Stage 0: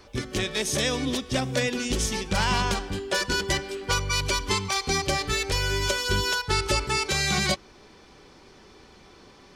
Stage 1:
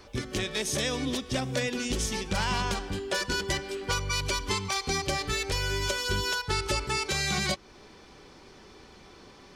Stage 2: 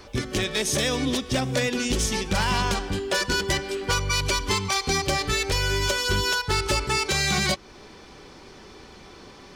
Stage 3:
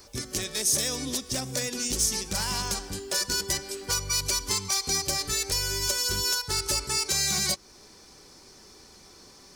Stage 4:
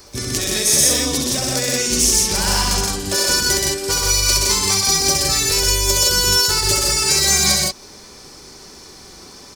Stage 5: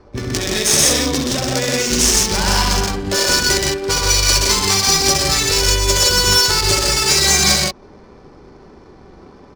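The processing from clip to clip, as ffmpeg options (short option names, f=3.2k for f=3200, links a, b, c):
-af "acompressor=threshold=-32dB:ratio=1.5"
-af "asoftclip=type=hard:threshold=-22dB,volume=5.5dB"
-af "aexciter=amount=3.3:drive=8.2:freq=4.5k,volume=-9dB"
-af "aecho=1:1:67.06|125.4|166.2:0.708|0.794|0.794,volume=7dB"
-af "adynamicsmooth=sensitivity=2.5:basefreq=1k,volume=3.5dB"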